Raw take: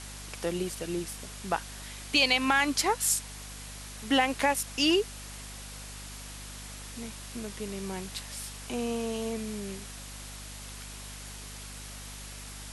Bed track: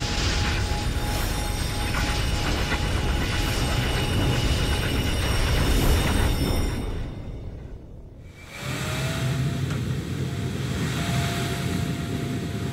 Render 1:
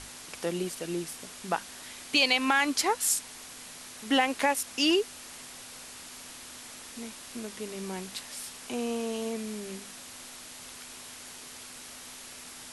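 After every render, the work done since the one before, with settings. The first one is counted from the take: hum notches 50/100/150/200 Hz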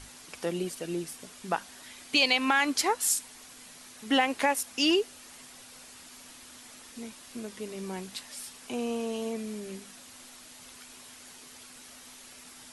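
noise reduction 6 dB, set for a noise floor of -46 dBFS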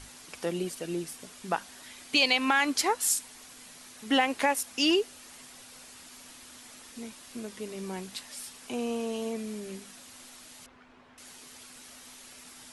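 10.66–11.18 s: low-pass 1.6 kHz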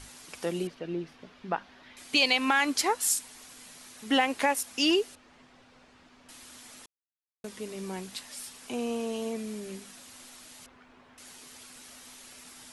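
0.67–1.97 s: distance through air 270 m; 5.15–6.29 s: tape spacing loss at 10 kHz 30 dB; 6.86–7.44 s: mute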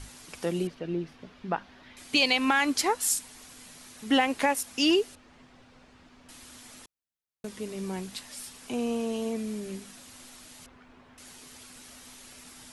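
bass shelf 210 Hz +7.5 dB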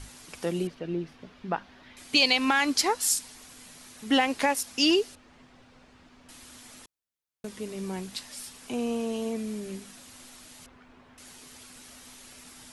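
dynamic bell 4.9 kHz, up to +5 dB, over -45 dBFS, Q 1.6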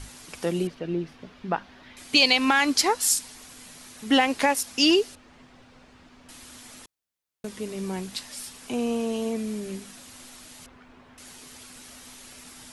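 trim +3 dB

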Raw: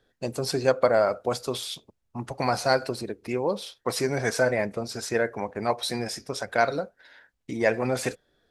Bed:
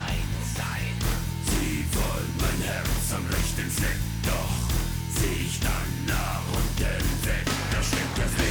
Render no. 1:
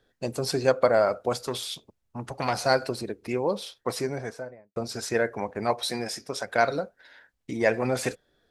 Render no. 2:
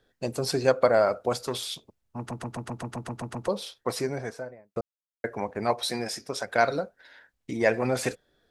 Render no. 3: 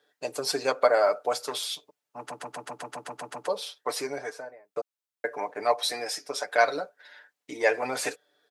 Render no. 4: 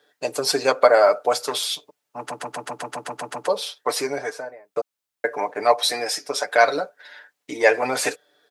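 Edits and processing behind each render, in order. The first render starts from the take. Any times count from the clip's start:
1.33–2.66 s: transformer saturation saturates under 1.1 kHz; 3.66–4.76 s: studio fade out; 5.83–6.56 s: bass shelf 100 Hz -12 dB
2.18 s: stutter in place 0.13 s, 10 plays; 4.81–5.24 s: mute
high-pass 450 Hz 12 dB/octave; comb 6.8 ms, depth 71%
trim +7 dB; peak limiter -2 dBFS, peak gain reduction 2 dB

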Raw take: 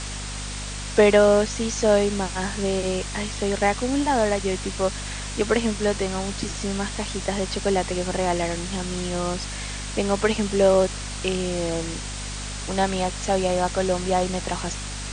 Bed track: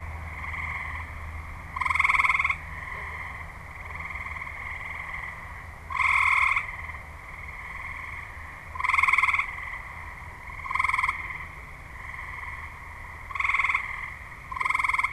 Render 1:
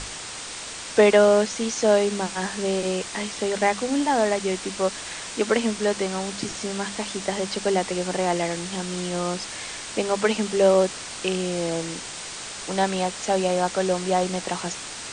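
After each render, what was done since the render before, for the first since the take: hum notches 50/100/150/200/250 Hz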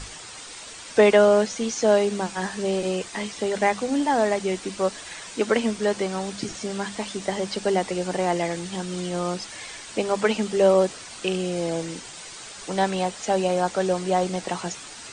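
noise reduction 8 dB, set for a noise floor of -36 dBFS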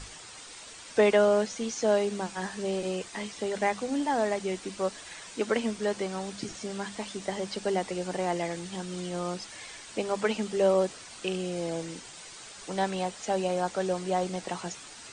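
trim -6 dB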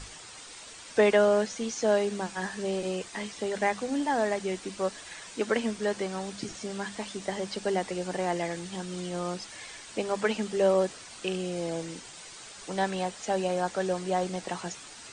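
dynamic bell 1.7 kHz, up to +4 dB, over -51 dBFS, Q 6.2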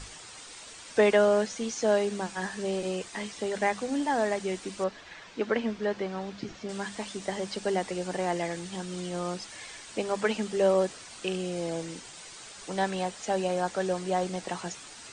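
4.84–6.69 s: distance through air 160 m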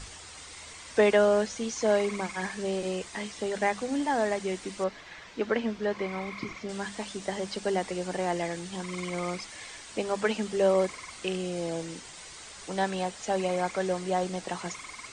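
add bed track -20.5 dB

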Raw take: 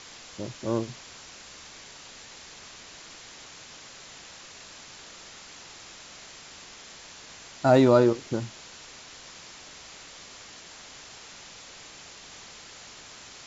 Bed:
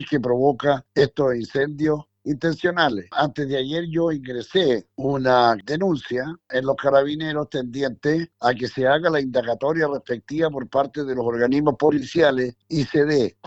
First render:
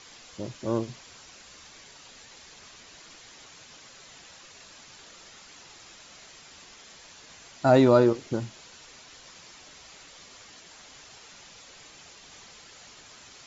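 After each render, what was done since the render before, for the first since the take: noise reduction 6 dB, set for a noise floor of -47 dBFS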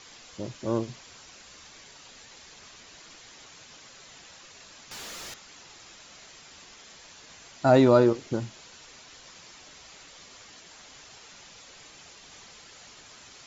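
4.91–5.34 s: waveshaping leveller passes 5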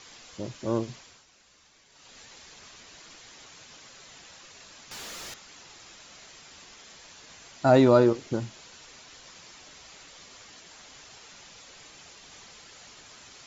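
0.95–2.19 s: dip -10.5 dB, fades 0.30 s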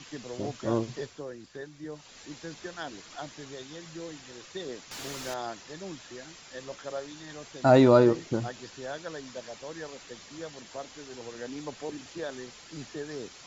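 add bed -20 dB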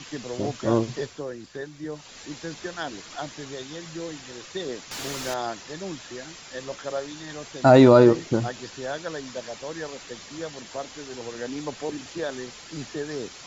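trim +6 dB; peak limiter -3 dBFS, peak gain reduction 2.5 dB

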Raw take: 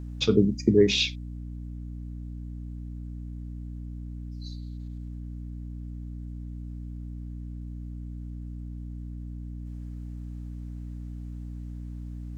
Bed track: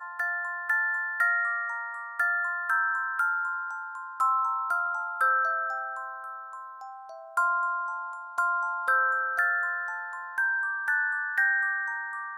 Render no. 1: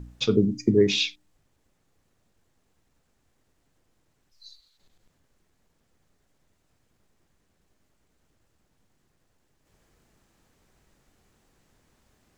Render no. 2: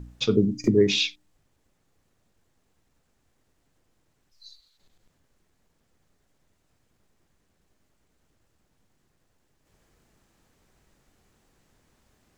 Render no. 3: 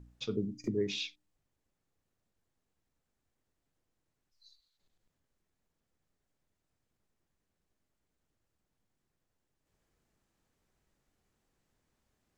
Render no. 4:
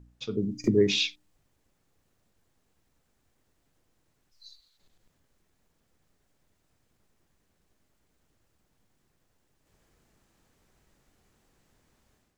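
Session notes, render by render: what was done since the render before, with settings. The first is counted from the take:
de-hum 60 Hz, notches 5
0.64–1.07 s: upward compressor, threshold -19 dBFS
trim -13.5 dB
level rider gain up to 11 dB

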